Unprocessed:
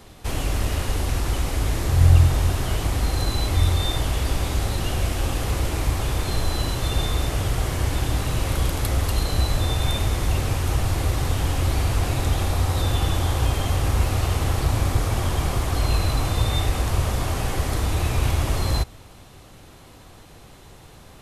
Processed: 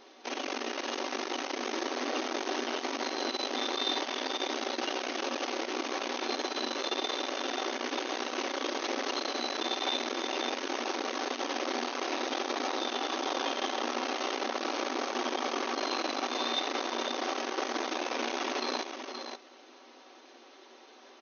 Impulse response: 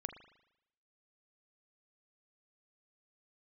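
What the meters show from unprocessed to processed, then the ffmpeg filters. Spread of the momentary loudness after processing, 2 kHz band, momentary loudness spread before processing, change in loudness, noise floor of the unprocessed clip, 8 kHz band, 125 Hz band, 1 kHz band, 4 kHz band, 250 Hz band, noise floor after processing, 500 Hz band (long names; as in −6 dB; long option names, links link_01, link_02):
3 LU, −2.5 dB, 3 LU, −9.5 dB, −46 dBFS, −9.0 dB, below −40 dB, −2.5 dB, −2.5 dB, −5.5 dB, −55 dBFS, −2.5 dB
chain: -af "aecho=1:1:5.3:0.36,aecho=1:1:524:0.473,aeval=exprs='0.562*(cos(1*acos(clip(val(0)/0.562,-1,1)))-cos(1*PI/2))+0.0631*(cos(8*acos(clip(val(0)/0.562,-1,1)))-cos(8*PI/2))':channel_layout=same,afftfilt=real='re*between(b*sr/4096,230,6500)':imag='im*between(b*sr/4096,230,6500)':win_size=4096:overlap=0.75,volume=-5.5dB"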